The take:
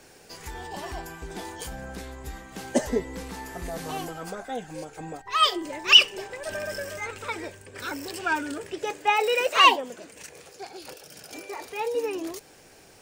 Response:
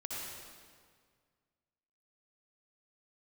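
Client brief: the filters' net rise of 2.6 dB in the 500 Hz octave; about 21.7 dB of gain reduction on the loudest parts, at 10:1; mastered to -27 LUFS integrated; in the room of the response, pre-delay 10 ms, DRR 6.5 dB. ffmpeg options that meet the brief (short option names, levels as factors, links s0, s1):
-filter_complex "[0:a]equalizer=f=500:t=o:g=3,acompressor=threshold=0.0282:ratio=10,asplit=2[s0][s1];[1:a]atrim=start_sample=2205,adelay=10[s2];[s1][s2]afir=irnorm=-1:irlink=0,volume=0.398[s3];[s0][s3]amix=inputs=2:normalize=0,volume=2.82"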